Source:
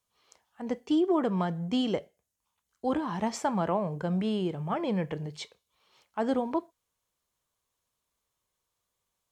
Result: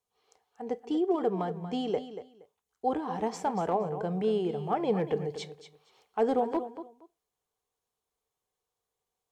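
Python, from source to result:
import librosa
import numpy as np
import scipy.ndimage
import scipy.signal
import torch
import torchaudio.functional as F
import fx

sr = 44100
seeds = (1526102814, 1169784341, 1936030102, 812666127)

y = fx.rider(x, sr, range_db=5, speed_s=2.0)
y = fx.echo_feedback(y, sr, ms=235, feedback_pct=19, wet_db=-11.5)
y = np.clip(y, -10.0 ** (-19.0 / 20.0), 10.0 ** (-19.0 / 20.0))
y = fx.small_body(y, sr, hz=(440.0, 750.0), ring_ms=40, db=13)
y = F.gain(torch.from_numpy(y), -5.0).numpy()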